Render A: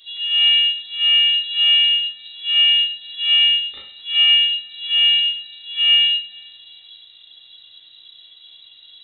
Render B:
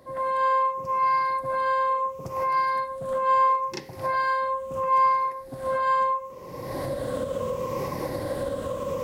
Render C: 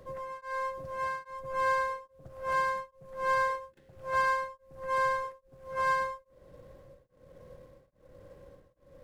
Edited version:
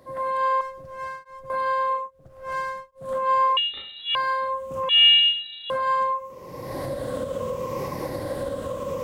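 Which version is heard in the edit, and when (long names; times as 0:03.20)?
B
0:00.61–0:01.50: punch in from C
0:02.03–0:03.03: punch in from C, crossfade 0.16 s
0:03.57–0:04.15: punch in from A
0:04.89–0:05.70: punch in from A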